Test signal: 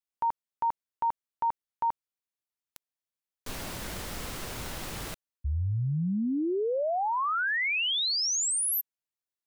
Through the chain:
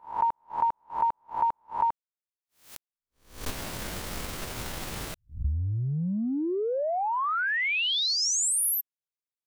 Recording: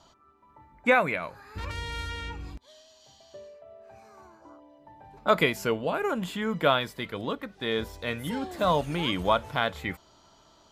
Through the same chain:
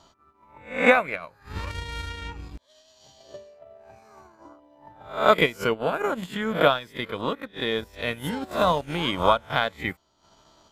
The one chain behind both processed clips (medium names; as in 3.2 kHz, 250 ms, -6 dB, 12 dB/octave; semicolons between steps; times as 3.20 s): reverse spectral sustain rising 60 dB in 0.45 s; transient shaper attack +6 dB, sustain -11 dB